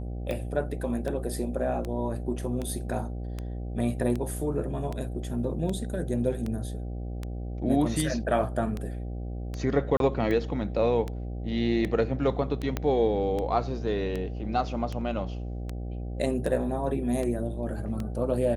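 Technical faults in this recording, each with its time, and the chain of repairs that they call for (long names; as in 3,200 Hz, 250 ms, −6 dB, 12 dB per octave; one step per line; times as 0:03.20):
mains buzz 60 Hz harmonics 13 −34 dBFS
scratch tick 78 rpm −20 dBFS
0:09.97–0:10.00: drop-out 32 ms
0:12.77: click −14 dBFS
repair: click removal
hum removal 60 Hz, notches 13
repair the gap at 0:09.97, 32 ms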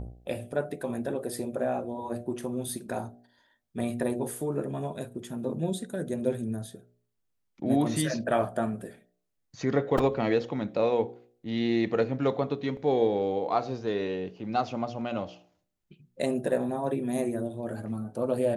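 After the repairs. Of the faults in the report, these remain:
0:12.77: click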